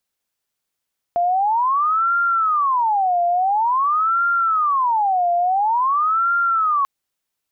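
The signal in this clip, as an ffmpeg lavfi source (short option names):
-f lavfi -i "aevalsrc='0.178*sin(2*PI*(1042.5*t-347.5/(2*PI*0.48)*sin(2*PI*0.48*t)))':d=5.69:s=44100"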